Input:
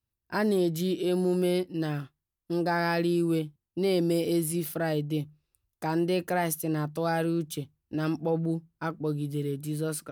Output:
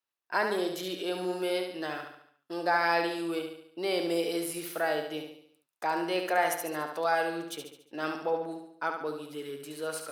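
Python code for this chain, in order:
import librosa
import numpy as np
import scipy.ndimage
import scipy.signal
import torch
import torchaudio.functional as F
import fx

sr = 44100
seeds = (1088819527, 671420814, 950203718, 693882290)

y = scipy.signal.sosfilt(scipy.signal.butter(2, 650.0, 'highpass', fs=sr, output='sos'), x)
y = fx.high_shelf(y, sr, hz=5700.0, db=-11.0)
y = fx.echo_feedback(y, sr, ms=71, feedback_pct=49, wet_db=-6)
y = y * 10.0 ** (4.0 / 20.0)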